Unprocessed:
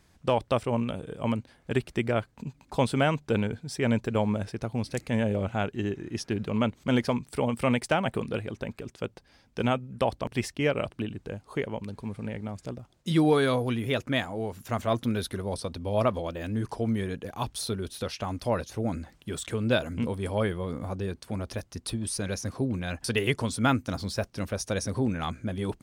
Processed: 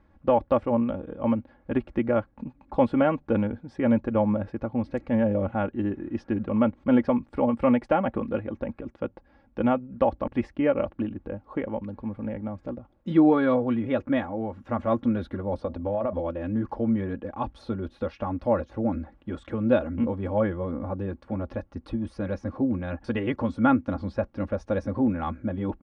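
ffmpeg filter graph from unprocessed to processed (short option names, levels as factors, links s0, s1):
-filter_complex "[0:a]asettb=1/sr,asplit=3[s0][s1][s2];[s0]atrim=end=15.584[s3];[s1]atrim=start=15.58:end=16.13,asetpts=PTS-STARTPTS,afade=t=in:d=0.004:c=qsin,afade=t=out:st=0.546:d=0.004:c=qsin,equalizer=f=660:w=1.5:g=5,bandreject=f=105.5:t=h:w=4,bandreject=f=211:t=h:w=4,bandreject=f=316.5:t=h:w=4,bandreject=f=422:t=h:w=4,bandreject=f=527.5:t=h:w=4,bandreject=f=633:t=h:w=4,acompressor=threshold=0.0501:ratio=6:attack=3.2:release=140:knee=1:detection=peak[s4];[s2]atrim=start=16.126[s5];[s3][s4]acrossfade=d=0.004:c1=hsin:c2=qsin[s6];[s6][s5]acrossfade=d=0.004:c1=qsin:c2=hsin,lowpass=1300,aecho=1:1:3.6:0.66,volume=1.26"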